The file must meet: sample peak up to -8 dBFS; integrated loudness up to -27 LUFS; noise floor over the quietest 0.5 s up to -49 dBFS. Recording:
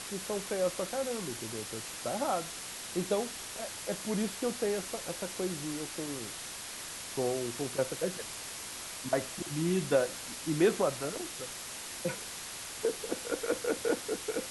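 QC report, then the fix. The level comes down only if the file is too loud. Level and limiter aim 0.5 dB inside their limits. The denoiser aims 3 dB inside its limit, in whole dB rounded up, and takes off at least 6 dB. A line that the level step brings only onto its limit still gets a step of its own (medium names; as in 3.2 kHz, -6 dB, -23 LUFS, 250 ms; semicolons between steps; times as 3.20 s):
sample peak -14.5 dBFS: pass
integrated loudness -34.5 LUFS: pass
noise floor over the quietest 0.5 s -42 dBFS: fail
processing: noise reduction 10 dB, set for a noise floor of -42 dBFS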